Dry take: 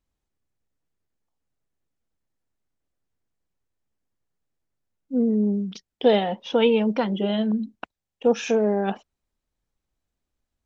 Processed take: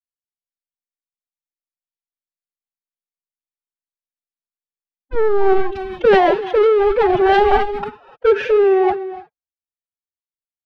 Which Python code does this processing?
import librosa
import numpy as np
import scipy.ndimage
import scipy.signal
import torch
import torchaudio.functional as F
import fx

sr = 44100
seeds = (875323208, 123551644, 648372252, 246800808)

y = fx.wiener(x, sr, points=15)
y = fx.band_shelf(y, sr, hz=950.0, db=8.5, octaves=2.8)
y = fx.leveller(y, sr, passes=5)
y = fx.rider(y, sr, range_db=4, speed_s=0.5)
y = fx.air_absorb(y, sr, metres=330.0)
y = fx.rev_gated(y, sr, seeds[0], gate_ms=330, shape='rising', drr_db=10.5)
y = fx.pitch_keep_formants(y, sr, semitones=11.0)
y = fx.band_widen(y, sr, depth_pct=40)
y = y * librosa.db_to_amplitude(-6.5)